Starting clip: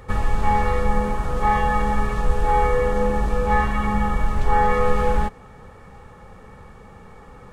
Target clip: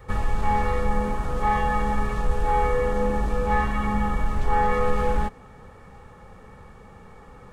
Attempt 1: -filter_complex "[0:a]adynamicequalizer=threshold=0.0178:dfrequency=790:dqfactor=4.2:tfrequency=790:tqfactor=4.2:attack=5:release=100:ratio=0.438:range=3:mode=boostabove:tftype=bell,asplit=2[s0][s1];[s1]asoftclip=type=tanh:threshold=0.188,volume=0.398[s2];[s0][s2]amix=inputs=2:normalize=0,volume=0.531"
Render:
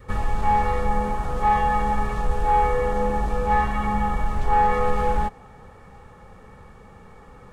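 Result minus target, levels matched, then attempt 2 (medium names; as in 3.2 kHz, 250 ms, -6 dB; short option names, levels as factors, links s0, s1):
250 Hz band -3.0 dB
-filter_complex "[0:a]adynamicequalizer=threshold=0.0178:dfrequency=260:dqfactor=4.2:tfrequency=260:tqfactor=4.2:attack=5:release=100:ratio=0.438:range=3:mode=boostabove:tftype=bell,asplit=2[s0][s1];[s1]asoftclip=type=tanh:threshold=0.188,volume=0.398[s2];[s0][s2]amix=inputs=2:normalize=0,volume=0.531"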